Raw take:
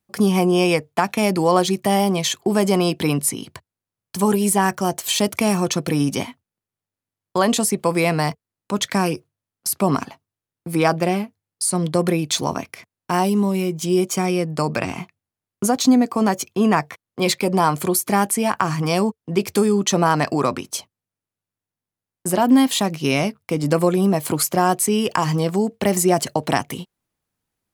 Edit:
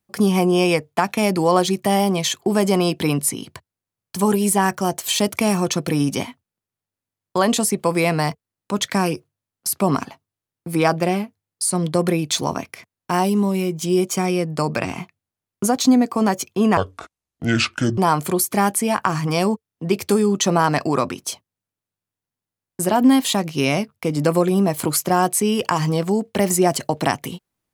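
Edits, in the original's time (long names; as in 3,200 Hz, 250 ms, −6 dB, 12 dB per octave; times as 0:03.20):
0:16.77–0:17.53: play speed 63%
0:19.19: stutter 0.03 s, 4 plays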